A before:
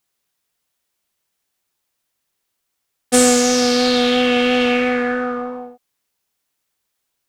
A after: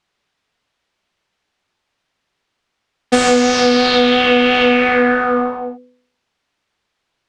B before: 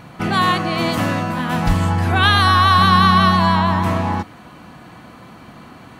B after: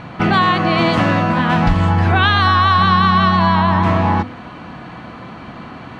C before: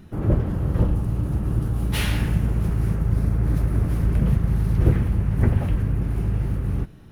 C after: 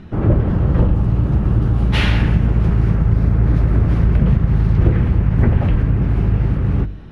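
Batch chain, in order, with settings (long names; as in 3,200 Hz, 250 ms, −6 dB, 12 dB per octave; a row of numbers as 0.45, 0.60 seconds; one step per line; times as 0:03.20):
low-pass filter 3,800 Hz 12 dB per octave
hum removal 49.8 Hz, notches 11
downward compressor 4 to 1, threshold −18 dBFS
normalise the peak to −1.5 dBFS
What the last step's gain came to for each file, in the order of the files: +8.5, +7.5, +9.0 decibels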